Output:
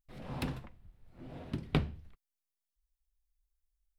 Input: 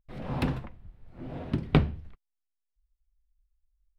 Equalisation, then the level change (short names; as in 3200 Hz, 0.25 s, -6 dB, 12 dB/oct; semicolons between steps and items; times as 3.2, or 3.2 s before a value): high shelf 4200 Hz +11.5 dB; -8.5 dB